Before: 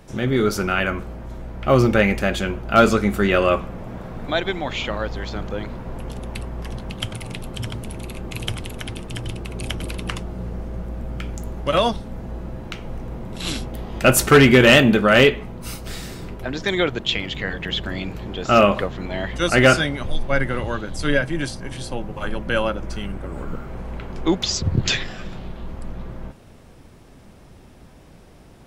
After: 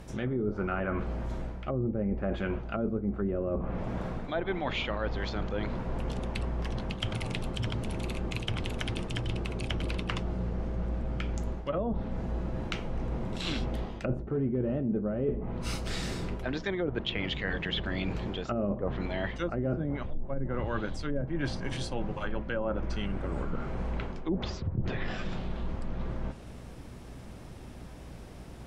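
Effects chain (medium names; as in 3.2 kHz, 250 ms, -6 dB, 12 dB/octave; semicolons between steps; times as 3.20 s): low-pass that closes with the level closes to 420 Hz, closed at -14 dBFS; reverse; compression 6:1, threshold -28 dBFS, peak gain reduction 16.5 dB; reverse; hum 60 Hz, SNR 18 dB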